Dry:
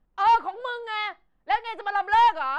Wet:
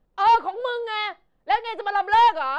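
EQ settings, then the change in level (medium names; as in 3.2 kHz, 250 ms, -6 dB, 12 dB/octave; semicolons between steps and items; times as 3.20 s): graphic EQ 125/500/4000 Hz +4/+8/+5 dB; 0.0 dB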